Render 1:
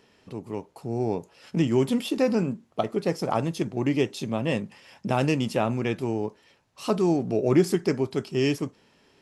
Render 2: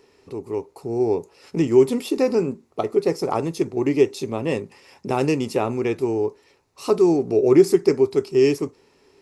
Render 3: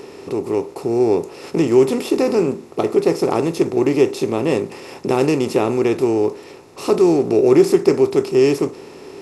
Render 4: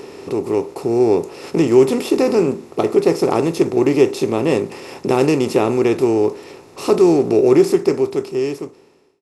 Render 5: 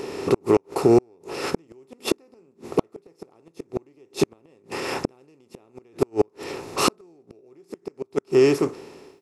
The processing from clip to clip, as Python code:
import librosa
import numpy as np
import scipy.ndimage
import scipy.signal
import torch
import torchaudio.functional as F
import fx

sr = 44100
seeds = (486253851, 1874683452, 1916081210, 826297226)

y1 = fx.graphic_eq_31(x, sr, hz=(125, 200, 400, 630, 1600, 3150), db=(-6, -11, 8, -5, -7, -9))
y1 = y1 * 10.0 ** (3.5 / 20.0)
y2 = fx.bin_compress(y1, sr, power=0.6)
y3 = fx.fade_out_tail(y2, sr, length_s=1.96)
y3 = y3 * 10.0 ** (1.5 / 20.0)
y4 = fx.recorder_agc(y3, sr, target_db=-9.0, rise_db_per_s=11.0, max_gain_db=30)
y4 = fx.gate_flip(y4, sr, shuts_db=-8.0, range_db=-41)
y4 = fx.dynamic_eq(y4, sr, hz=1400.0, q=1.8, threshold_db=-44.0, ratio=4.0, max_db=6)
y4 = y4 * 10.0 ** (1.5 / 20.0)